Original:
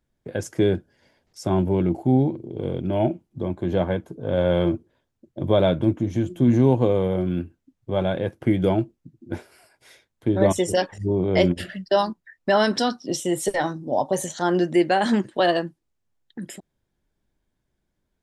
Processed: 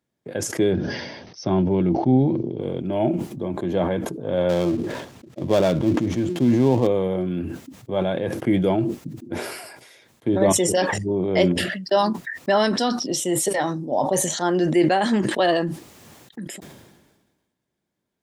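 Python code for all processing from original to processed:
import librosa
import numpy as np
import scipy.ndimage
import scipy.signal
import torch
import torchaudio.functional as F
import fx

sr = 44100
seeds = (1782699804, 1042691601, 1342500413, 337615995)

y = fx.chain(x, sr, fx.brickwall_lowpass(high_hz=6300.0),
    fx.bass_treble(bass_db=4, treble_db=3), at=(0.72, 2.61))
y = fx.chain(y, sr, fx.dead_time(dead_ms=0.12),
    fx.high_shelf(hz=9400.0, db=-10.5), at=(4.49, 6.87))
y = scipy.signal.sosfilt(scipy.signal.butter(2, 140.0, 'highpass', fs=sr, output='sos'), y)
y = fx.notch(y, sr, hz=1500.0, q=19.0)
y = fx.sustainer(y, sr, db_per_s=43.0)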